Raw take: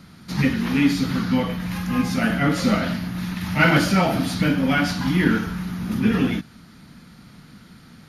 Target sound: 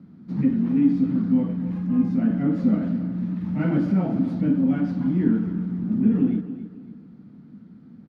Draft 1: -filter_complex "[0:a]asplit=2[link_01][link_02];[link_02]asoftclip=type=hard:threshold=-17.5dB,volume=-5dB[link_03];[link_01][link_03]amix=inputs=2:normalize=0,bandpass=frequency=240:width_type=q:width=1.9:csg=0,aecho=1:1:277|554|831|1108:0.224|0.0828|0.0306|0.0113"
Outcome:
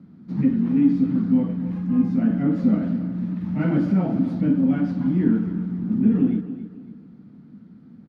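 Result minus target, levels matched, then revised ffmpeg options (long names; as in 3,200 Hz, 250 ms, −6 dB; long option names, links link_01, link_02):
hard clipping: distortion −5 dB
-filter_complex "[0:a]asplit=2[link_01][link_02];[link_02]asoftclip=type=hard:threshold=-24dB,volume=-5dB[link_03];[link_01][link_03]amix=inputs=2:normalize=0,bandpass=frequency=240:width_type=q:width=1.9:csg=0,aecho=1:1:277|554|831|1108:0.224|0.0828|0.0306|0.0113"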